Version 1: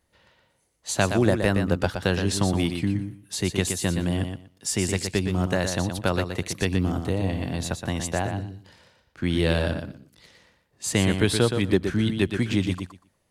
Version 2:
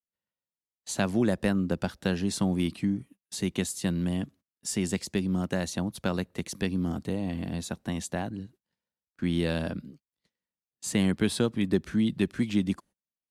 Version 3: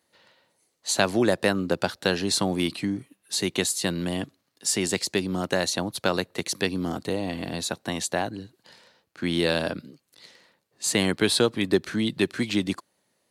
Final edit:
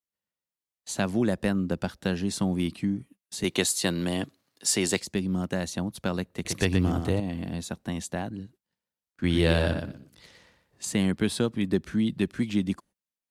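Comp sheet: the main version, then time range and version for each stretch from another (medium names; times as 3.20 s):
2
3.44–5.00 s: from 3
6.45–7.20 s: from 1
9.24–10.85 s: from 1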